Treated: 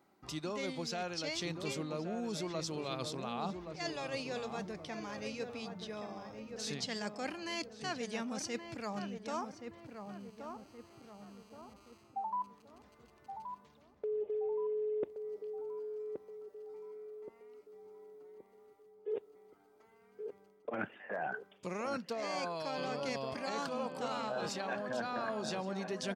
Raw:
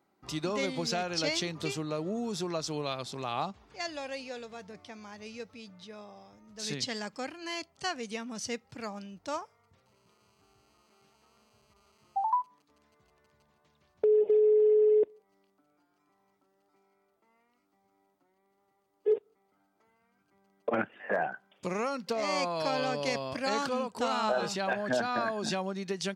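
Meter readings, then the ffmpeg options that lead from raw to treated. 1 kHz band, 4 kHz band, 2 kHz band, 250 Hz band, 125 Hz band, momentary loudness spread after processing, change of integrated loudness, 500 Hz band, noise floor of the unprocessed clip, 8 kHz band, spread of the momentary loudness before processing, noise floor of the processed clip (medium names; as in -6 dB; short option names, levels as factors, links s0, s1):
-6.5 dB, -5.5 dB, -5.5 dB, -4.0 dB, no reading, 16 LU, -8.5 dB, -9.0 dB, -73 dBFS, -5.0 dB, 18 LU, -65 dBFS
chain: -filter_complex "[0:a]areverse,acompressor=threshold=0.0112:ratio=6,areverse,asplit=2[s0][s1];[s1]adelay=1124,lowpass=f=1300:p=1,volume=0.501,asplit=2[s2][s3];[s3]adelay=1124,lowpass=f=1300:p=1,volume=0.5,asplit=2[s4][s5];[s5]adelay=1124,lowpass=f=1300:p=1,volume=0.5,asplit=2[s6][s7];[s7]adelay=1124,lowpass=f=1300:p=1,volume=0.5,asplit=2[s8][s9];[s9]adelay=1124,lowpass=f=1300:p=1,volume=0.5,asplit=2[s10][s11];[s11]adelay=1124,lowpass=f=1300:p=1,volume=0.5[s12];[s0][s2][s4][s6][s8][s10][s12]amix=inputs=7:normalize=0,volume=1.41"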